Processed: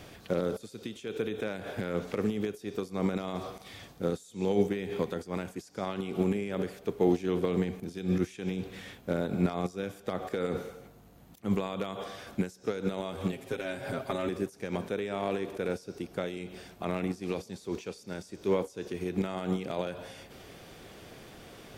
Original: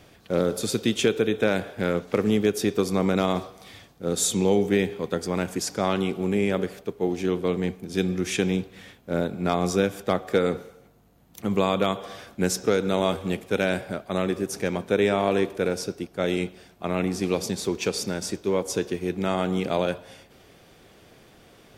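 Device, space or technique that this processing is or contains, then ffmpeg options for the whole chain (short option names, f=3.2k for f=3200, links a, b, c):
de-esser from a sidechain: -filter_complex "[0:a]asplit=2[a][b];[b]highpass=6.9k,apad=whole_len=960143[c];[a][c]sidechaincompress=threshold=-57dB:ratio=10:attack=0.92:release=90,asettb=1/sr,asplit=3[d][e][f];[d]atrim=end=13.324[g];[e]atrim=start=13.32:end=14.29,asetpts=PTS-STARTPTS,afade=t=in:d=0.004:c=qsin,afade=t=out:st=0.966:d=0.004:c=qsin,aecho=1:1:7.5:0.97,atrim=end_sample=42777[h];[f]atrim=start=14.286[i];[g][h]acrossfade=d=0.004:c1=hsin:c2=qsin[j];[j][i]acrossfade=d=0.004:c1=qsin:c2=hsin,volume=3.5dB"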